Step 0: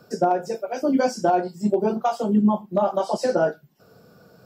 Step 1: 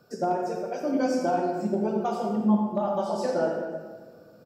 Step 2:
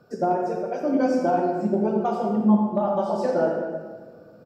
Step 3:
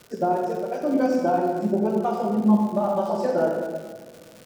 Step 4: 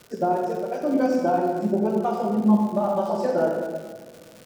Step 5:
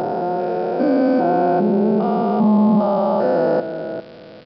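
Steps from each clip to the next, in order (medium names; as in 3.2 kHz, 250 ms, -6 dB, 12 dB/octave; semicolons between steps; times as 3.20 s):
feedback delay 267 ms, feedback 36%, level -21 dB; on a send at -1 dB: reverberation RT60 1.5 s, pre-delay 40 ms; on the sum: trim -7.5 dB
treble shelf 3.3 kHz -11 dB; trim +4 dB
crackle 240 per s -35 dBFS
no audible change
spectrogram pixelated in time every 400 ms; resampled via 11.025 kHz; trim +8 dB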